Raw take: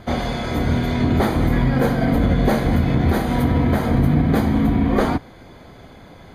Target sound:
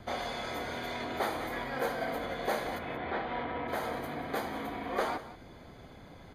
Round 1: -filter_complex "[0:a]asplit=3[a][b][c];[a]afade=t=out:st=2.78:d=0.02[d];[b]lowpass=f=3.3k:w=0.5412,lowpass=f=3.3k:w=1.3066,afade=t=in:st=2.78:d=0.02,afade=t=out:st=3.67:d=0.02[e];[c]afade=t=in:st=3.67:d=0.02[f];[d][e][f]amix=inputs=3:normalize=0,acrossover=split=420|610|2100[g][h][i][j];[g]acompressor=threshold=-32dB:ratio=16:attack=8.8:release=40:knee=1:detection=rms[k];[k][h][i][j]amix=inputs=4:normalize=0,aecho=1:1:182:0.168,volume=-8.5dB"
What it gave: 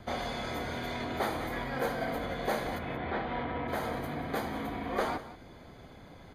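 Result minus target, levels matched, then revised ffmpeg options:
compressor: peak gain reduction -6.5 dB
-filter_complex "[0:a]asplit=3[a][b][c];[a]afade=t=out:st=2.78:d=0.02[d];[b]lowpass=f=3.3k:w=0.5412,lowpass=f=3.3k:w=1.3066,afade=t=in:st=2.78:d=0.02,afade=t=out:st=3.67:d=0.02[e];[c]afade=t=in:st=3.67:d=0.02[f];[d][e][f]amix=inputs=3:normalize=0,acrossover=split=420|610|2100[g][h][i][j];[g]acompressor=threshold=-39dB:ratio=16:attack=8.8:release=40:knee=1:detection=rms[k];[k][h][i][j]amix=inputs=4:normalize=0,aecho=1:1:182:0.168,volume=-8.5dB"

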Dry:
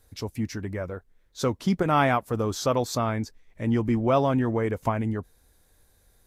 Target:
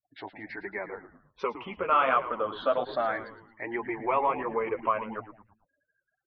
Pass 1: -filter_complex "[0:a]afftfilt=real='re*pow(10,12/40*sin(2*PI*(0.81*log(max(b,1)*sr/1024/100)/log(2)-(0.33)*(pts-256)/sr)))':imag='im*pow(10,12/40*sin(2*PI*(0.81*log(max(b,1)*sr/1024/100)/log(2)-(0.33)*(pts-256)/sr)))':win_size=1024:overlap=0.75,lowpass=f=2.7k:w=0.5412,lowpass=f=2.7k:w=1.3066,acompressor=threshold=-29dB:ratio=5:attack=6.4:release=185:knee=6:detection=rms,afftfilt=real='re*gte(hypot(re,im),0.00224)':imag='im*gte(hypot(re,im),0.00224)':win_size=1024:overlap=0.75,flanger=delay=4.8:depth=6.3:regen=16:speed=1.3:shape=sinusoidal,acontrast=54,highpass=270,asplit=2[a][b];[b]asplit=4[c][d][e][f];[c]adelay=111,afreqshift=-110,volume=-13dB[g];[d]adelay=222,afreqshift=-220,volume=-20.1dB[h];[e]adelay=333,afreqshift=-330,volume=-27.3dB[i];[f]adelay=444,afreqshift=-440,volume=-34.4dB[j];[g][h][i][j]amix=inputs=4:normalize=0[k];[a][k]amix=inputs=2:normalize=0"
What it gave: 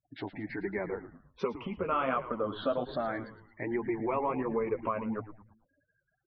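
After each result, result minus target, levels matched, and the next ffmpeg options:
250 Hz band +8.5 dB; compressor: peak gain reduction +8.5 dB
-filter_complex "[0:a]afftfilt=real='re*pow(10,12/40*sin(2*PI*(0.81*log(max(b,1)*sr/1024/100)/log(2)-(0.33)*(pts-256)/sr)))':imag='im*pow(10,12/40*sin(2*PI*(0.81*log(max(b,1)*sr/1024/100)/log(2)-(0.33)*(pts-256)/sr)))':win_size=1024:overlap=0.75,lowpass=f=2.7k:w=0.5412,lowpass=f=2.7k:w=1.3066,acompressor=threshold=-29dB:ratio=5:attack=6.4:release=185:knee=6:detection=rms,afftfilt=real='re*gte(hypot(re,im),0.00224)':imag='im*gte(hypot(re,im),0.00224)':win_size=1024:overlap=0.75,flanger=delay=4.8:depth=6.3:regen=16:speed=1.3:shape=sinusoidal,acontrast=54,highpass=630,asplit=2[a][b];[b]asplit=4[c][d][e][f];[c]adelay=111,afreqshift=-110,volume=-13dB[g];[d]adelay=222,afreqshift=-220,volume=-20.1dB[h];[e]adelay=333,afreqshift=-330,volume=-27.3dB[i];[f]adelay=444,afreqshift=-440,volume=-34.4dB[j];[g][h][i][j]amix=inputs=4:normalize=0[k];[a][k]amix=inputs=2:normalize=0"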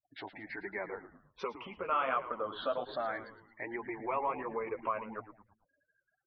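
compressor: peak gain reduction +8.5 dB
-filter_complex "[0:a]afftfilt=real='re*pow(10,12/40*sin(2*PI*(0.81*log(max(b,1)*sr/1024/100)/log(2)-(0.33)*(pts-256)/sr)))':imag='im*pow(10,12/40*sin(2*PI*(0.81*log(max(b,1)*sr/1024/100)/log(2)-(0.33)*(pts-256)/sr)))':win_size=1024:overlap=0.75,lowpass=f=2.7k:w=0.5412,lowpass=f=2.7k:w=1.3066,acompressor=threshold=-18.5dB:ratio=5:attack=6.4:release=185:knee=6:detection=rms,afftfilt=real='re*gte(hypot(re,im),0.00224)':imag='im*gte(hypot(re,im),0.00224)':win_size=1024:overlap=0.75,flanger=delay=4.8:depth=6.3:regen=16:speed=1.3:shape=sinusoidal,acontrast=54,highpass=630,asplit=2[a][b];[b]asplit=4[c][d][e][f];[c]adelay=111,afreqshift=-110,volume=-13dB[g];[d]adelay=222,afreqshift=-220,volume=-20.1dB[h];[e]adelay=333,afreqshift=-330,volume=-27.3dB[i];[f]adelay=444,afreqshift=-440,volume=-34.4dB[j];[g][h][i][j]amix=inputs=4:normalize=0[k];[a][k]amix=inputs=2:normalize=0"

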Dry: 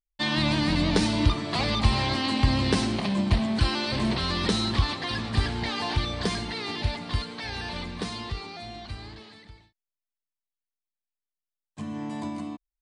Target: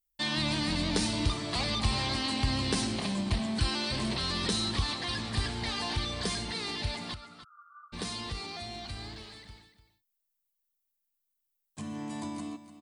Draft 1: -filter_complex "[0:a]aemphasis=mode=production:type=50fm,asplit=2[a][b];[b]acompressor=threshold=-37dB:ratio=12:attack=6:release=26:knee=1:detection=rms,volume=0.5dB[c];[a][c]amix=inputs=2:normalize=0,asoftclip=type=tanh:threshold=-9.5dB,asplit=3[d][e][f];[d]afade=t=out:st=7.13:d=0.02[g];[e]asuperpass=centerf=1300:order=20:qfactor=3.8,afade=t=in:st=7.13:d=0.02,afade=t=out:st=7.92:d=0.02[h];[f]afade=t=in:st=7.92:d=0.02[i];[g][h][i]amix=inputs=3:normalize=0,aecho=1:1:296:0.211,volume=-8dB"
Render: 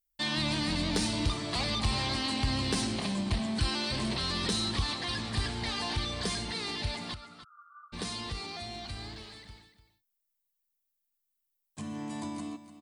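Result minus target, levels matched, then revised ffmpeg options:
soft clip: distortion +16 dB
-filter_complex "[0:a]aemphasis=mode=production:type=50fm,asplit=2[a][b];[b]acompressor=threshold=-37dB:ratio=12:attack=6:release=26:knee=1:detection=rms,volume=0.5dB[c];[a][c]amix=inputs=2:normalize=0,asoftclip=type=tanh:threshold=-0.5dB,asplit=3[d][e][f];[d]afade=t=out:st=7.13:d=0.02[g];[e]asuperpass=centerf=1300:order=20:qfactor=3.8,afade=t=in:st=7.13:d=0.02,afade=t=out:st=7.92:d=0.02[h];[f]afade=t=in:st=7.92:d=0.02[i];[g][h][i]amix=inputs=3:normalize=0,aecho=1:1:296:0.211,volume=-8dB"

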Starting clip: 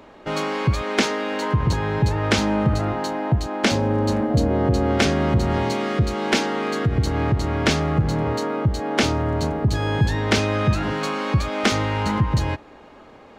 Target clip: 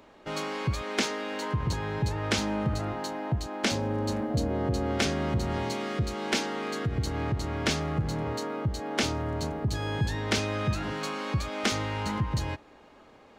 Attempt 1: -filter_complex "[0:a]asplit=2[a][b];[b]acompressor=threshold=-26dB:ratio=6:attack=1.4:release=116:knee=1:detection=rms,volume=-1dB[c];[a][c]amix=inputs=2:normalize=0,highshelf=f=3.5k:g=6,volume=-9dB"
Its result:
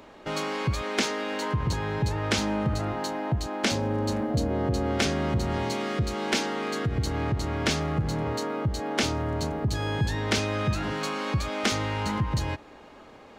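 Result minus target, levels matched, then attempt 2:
compressor: peak gain reduction +14.5 dB
-af "highshelf=f=3.5k:g=6,volume=-9dB"

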